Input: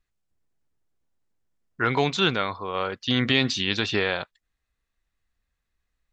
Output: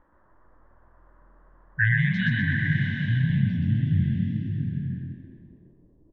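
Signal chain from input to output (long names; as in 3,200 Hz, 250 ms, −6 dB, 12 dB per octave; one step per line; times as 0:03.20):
tape wow and flutter 140 cents
in parallel at −2 dB: output level in coarse steps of 19 dB
on the sum: linear-phase brick-wall band-stop 170–1,500 Hz
noise in a band 190–1,300 Hz −71 dBFS
EQ curve with evenly spaced ripples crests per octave 1.2, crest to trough 7 dB
low-pass filter sweep 1,600 Hz → 310 Hz, 0:01.82–0:04.00
low-shelf EQ 270 Hz +9.5 dB
echo with shifted repeats 124 ms, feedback 45%, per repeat +41 Hz, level −3 dB
slow-attack reverb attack 770 ms, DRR 3.5 dB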